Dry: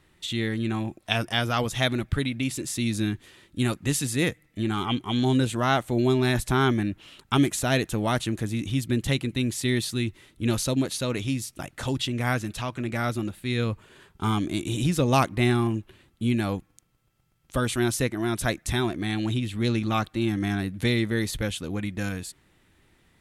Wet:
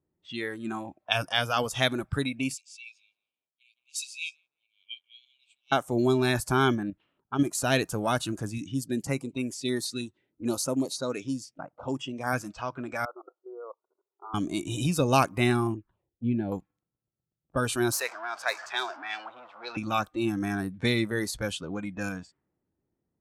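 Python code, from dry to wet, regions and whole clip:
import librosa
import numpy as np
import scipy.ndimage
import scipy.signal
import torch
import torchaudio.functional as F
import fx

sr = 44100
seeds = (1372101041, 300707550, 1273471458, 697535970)

y = fx.chain(x, sr, fx.brickwall_highpass(low_hz=2200.0),
    fx.echo_crushed(ms=171, feedback_pct=35, bits=9, wet_db=-13.0), at=(2.54, 5.72))
y = fx.chain(y, sr, fx.high_shelf(hz=3300.0, db=-4.5),
    fx.level_steps(step_db=9), at=(6.75, 7.55))
y = fx.chain(y, sr, fx.highpass(hz=130.0, slope=6),
    fx.filter_held_notch(hz=6.3, low_hz=930.0, high_hz=4200.0), at=(8.58, 12.33))
y = fx.chain(y, sr, fx.brickwall_bandpass(low_hz=330.0, high_hz=1500.0),
    fx.level_steps(step_db=19), at=(13.05, 14.34))
y = fx.chain(y, sr, fx.lowpass(hz=1600.0, slope=6),
    fx.env_phaser(low_hz=160.0, high_hz=1200.0, full_db=-25.5), at=(15.74, 16.52))
y = fx.chain(y, sr, fx.zero_step(step_db=-30.0),
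    fx.highpass(hz=740.0, slope=12),
    fx.resample_linear(factor=2), at=(17.92, 19.77))
y = fx.env_lowpass(y, sr, base_hz=550.0, full_db=-23.0)
y = fx.highpass(y, sr, hz=150.0, slope=6)
y = fx.noise_reduce_blind(y, sr, reduce_db=14)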